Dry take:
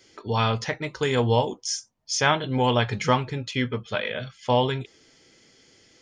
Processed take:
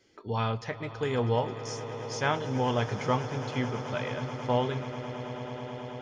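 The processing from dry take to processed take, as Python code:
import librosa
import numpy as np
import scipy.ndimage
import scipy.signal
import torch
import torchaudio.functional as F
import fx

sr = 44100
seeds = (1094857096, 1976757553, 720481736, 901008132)

p1 = fx.high_shelf(x, sr, hz=2700.0, db=-9.5)
p2 = p1 + fx.echo_swell(p1, sr, ms=108, loudest=8, wet_db=-17.0, dry=0)
y = F.gain(torch.from_numpy(p2), -5.5).numpy()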